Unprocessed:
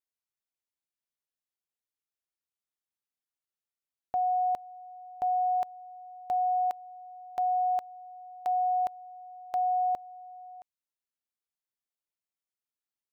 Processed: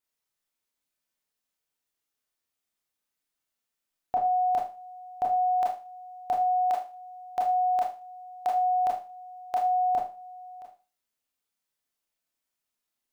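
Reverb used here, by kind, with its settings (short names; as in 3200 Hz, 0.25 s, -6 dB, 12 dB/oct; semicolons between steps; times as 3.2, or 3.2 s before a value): Schroeder reverb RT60 0.34 s, combs from 25 ms, DRR -2.5 dB; gain +4 dB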